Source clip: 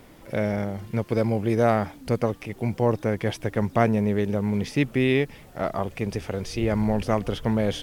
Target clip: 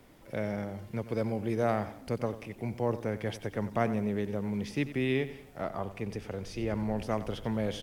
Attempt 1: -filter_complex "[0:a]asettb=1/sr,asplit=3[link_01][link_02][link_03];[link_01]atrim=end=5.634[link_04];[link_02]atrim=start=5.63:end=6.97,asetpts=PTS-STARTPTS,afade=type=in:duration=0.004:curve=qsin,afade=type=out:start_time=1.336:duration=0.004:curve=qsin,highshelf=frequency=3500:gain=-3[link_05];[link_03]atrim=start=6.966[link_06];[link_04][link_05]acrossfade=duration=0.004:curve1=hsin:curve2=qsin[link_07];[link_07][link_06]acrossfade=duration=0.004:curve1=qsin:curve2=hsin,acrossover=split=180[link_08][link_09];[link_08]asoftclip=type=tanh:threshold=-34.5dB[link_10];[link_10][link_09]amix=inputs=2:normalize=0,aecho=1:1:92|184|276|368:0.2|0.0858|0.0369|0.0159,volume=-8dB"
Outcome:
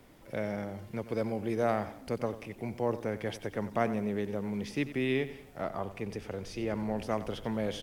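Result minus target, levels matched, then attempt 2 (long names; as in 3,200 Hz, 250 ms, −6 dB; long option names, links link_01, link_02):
soft clipping: distortion +11 dB
-filter_complex "[0:a]asettb=1/sr,asplit=3[link_01][link_02][link_03];[link_01]atrim=end=5.634[link_04];[link_02]atrim=start=5.63:end=6.97,asetpts=PTS-STARTPTS,afade=type=in:duration=0.004:curve=qsin,afade=type=out:start_time=1.336:duration=0.004:curve=qsin,highshelf=frequency=3500:gain=-3[link_05];[link_03]atrim=start=6.966[link_06];[link_04][link_05]acrossfade=duration=0.004:curve1=hsin:curve2=qsin[link_07];[link_07][link_06]acrossfade=duration=0.004:curve1=qsin:curve2=hsin,acrossover=split=180[link_08][link_09];[link_08]asoftclip=type=tanh:threshold=-24dB[link_10];[link_10][link_09]amix=inputs=2:normalize=0,aecho=1:1:92|184|276|368:0.2|0.0858|0.0369|0.0159,volume=-8dB"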